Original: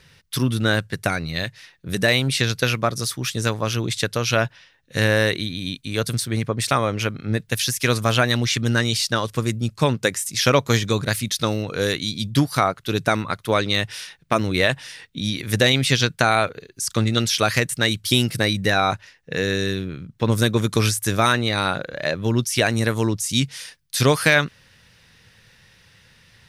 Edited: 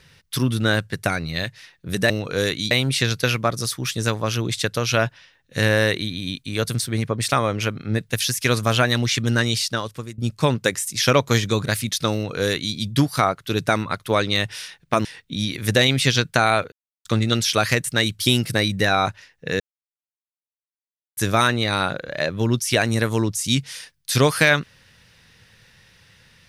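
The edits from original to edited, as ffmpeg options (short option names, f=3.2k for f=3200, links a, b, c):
-filter_complex "[0:a]asplit=9[a][b][c][d][e][f][g][h][i];[a]atrim=end=2.102[j];[b]atrim=start=11.528:end=12.142[k];[c]atrim=start=2.098:end=9.57,asetpts=PTS-STARTPTS,afade=t=out:st=6.832:d=0.64:silence=0.11885[l];[d]atrim=start=9.57:end=14.442,asetpts=PTS-STARTPTS,afade=t=in:d=0.004:c=hsin:silence=0.11885[m];[e]atrim=start=14.898:end=16.57,asetpts=PTS-STARTPTS,afade=t=out:st=1.668:d=0.004:c=hsin[n];[f]atrim=start=16.57:end=16.9,asetpts=PTS-STARTPTS,volume=0[o];[g]atrim=start=16.9:end=19.45,asetpts=PTS-STARTPTS,afade=t=in:d=0.004:c=hsin,afade=t=out:st=2.546:d=0.004:c=hsin[p];[h]atrim=start=19.45:end=21.02,asetpts=PTS-STARTPTS,volume=0[q];[i]atrim=start=21.02,asetpts=PTS-STARTPTS,afade=t=in:d=0.004:c=hsin[r];[j][k]acrossfade=d=0.004:c1=hsin:c2=hsin[s];[l][m]concat=n=2:v=0:a=1[t];[s][t]acrossfade=d=0.004:c1=hsin:c2=hsin[u];[n][o][p][q][r]concat=n=5:v=0:a=1[v];[u][v]acrossfade=d=0.004:c1=hsin:c2=hsin"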